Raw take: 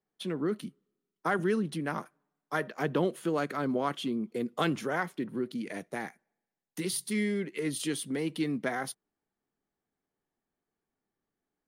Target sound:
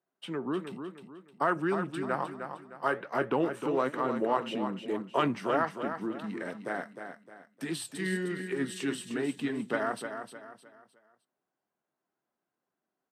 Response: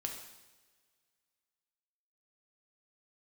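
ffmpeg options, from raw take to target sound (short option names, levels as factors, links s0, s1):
-af "highpass=120,equalizer=f=1000:w=0.31:g=12,asetrate=39249,aresample=44100,flanger=delay=0.6:depth=9.9:regen=75:speed=1.2:shape=triangular,aecho=1:1:307|614|921|1228:0.398|0.143|0.0516|0.0186,volume=0.631"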